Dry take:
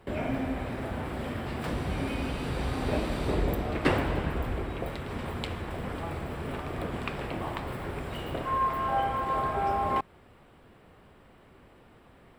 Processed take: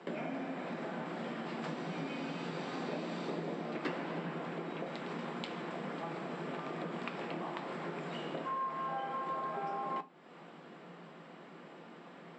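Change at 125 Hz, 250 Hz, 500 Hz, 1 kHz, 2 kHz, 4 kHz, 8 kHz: -13.0 dB, -6.5 dB, -7.0 dB, -8.0 dB, -7.0 dB, -6.5 dB, -10.5 dB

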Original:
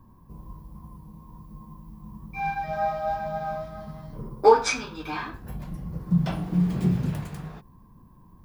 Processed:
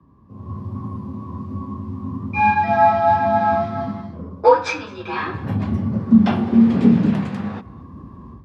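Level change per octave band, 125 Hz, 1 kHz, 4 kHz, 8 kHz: +5.0 dB, +9.5 dB, +1.5 dB, no reading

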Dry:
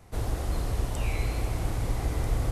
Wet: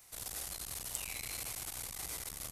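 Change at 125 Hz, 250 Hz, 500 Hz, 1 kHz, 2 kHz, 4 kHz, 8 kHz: -25.0 dB, -20.5 dB, -18.5 dB, -13.5 dB, -6.5 dB, -1.0 dB, +5.0 dB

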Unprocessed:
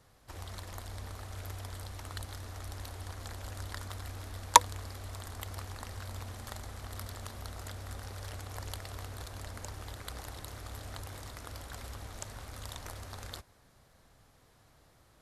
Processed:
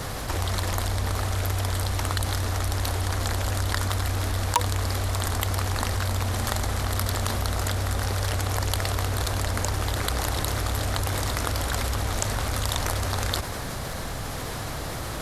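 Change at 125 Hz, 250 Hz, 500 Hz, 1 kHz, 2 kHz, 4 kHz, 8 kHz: +17.0 dB, +17.0 dB, +15.0 dB, +5.0 dB, +13.0 dB, +11.0 dB, +8.0 dB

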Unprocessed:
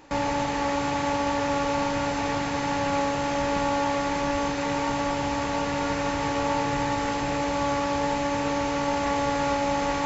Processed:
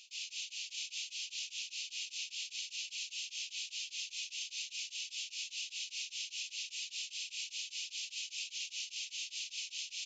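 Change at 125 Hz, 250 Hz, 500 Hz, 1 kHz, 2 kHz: under -40 dB, under -40 dB, under -40 dB, under -40 dB, -14.0 dB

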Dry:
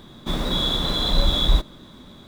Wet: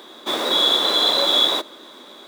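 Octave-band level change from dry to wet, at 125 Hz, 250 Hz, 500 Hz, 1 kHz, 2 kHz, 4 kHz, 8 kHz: under -20 dB, -2.5 dB, +6.5 dB, +7.0 dB, +7.0 dB, +7.0 dB, +7.0 dB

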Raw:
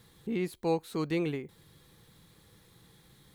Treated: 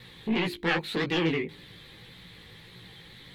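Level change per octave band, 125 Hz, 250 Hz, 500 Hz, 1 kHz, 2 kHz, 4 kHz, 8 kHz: +3.5 dB, +3.5 dB, +1.5 dB, +4.5 dB, +14.0 dB, +14.5 dB, +1.0 dB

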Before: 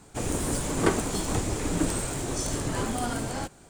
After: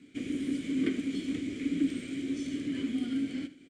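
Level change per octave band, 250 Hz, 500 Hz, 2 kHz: +1.0 dB, -12.0 dB, -8.0 dB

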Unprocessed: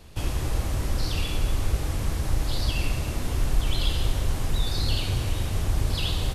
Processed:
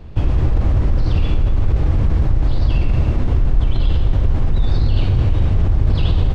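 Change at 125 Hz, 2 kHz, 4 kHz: +11.0 dB, 0.0 dB, -4.5 dB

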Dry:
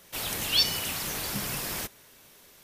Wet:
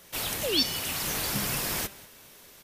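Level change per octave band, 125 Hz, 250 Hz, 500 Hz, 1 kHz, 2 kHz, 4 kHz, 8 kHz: +1.5 dB, +4.5 dB, +6.0 dB, +1.5 dB, +1.0 dB, -1.5 dB, +1.5 dB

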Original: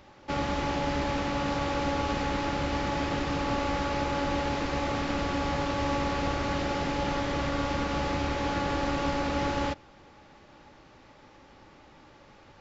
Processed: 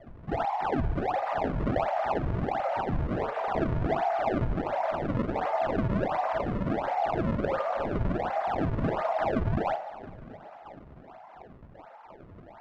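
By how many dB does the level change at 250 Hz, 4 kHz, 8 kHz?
-1.5 dB, -13.0 dB, no reading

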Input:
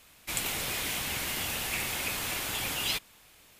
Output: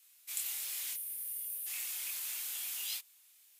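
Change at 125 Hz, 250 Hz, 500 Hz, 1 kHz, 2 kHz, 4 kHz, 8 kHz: under -40 dB, under -30 dB, under -25 dB, -22.5 dB, -15.5 dB, -11.5 dB, -4.0 dB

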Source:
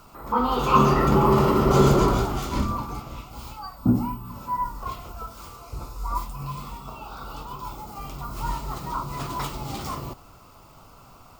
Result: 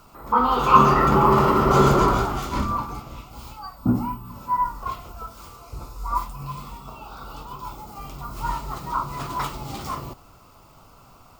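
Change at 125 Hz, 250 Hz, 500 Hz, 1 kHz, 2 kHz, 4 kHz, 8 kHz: -1.0 dB, -0.5 dB, 0.0 dB, +4.5 dB, +4.0 dB, +0.5 dB, -0.5 dB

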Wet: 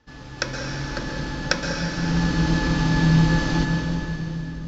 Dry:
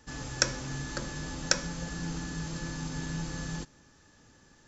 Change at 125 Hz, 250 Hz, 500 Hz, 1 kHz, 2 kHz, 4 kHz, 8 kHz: +15.5 dB, +15.5 dB, +10.5 dB, +12.0 dB, +10.5 dB, +5.5 dB, no reading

